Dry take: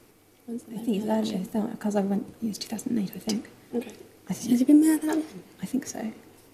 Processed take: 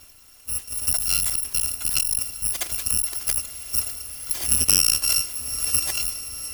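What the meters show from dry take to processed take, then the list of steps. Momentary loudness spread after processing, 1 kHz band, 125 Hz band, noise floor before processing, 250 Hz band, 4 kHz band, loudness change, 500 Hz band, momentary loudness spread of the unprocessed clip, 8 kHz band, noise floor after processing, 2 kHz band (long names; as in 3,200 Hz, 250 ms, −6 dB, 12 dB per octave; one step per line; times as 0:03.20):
11 LU, −4.5 dB, −2.5 dB, −58 dBFS, −22.0 dB, +16.0 dB, +6.0 dB, −14.5 dB, 18 LU, +19.5 dB, −50 dBFS, +8.5 dB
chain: samples in bit-reversed order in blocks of 256 samples
on a send: feedback delay with all-pass diffusion 989 ms, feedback 50%, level −15.5 dB
on the sum: saturating transformer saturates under 2,500 Hz
level +8 dB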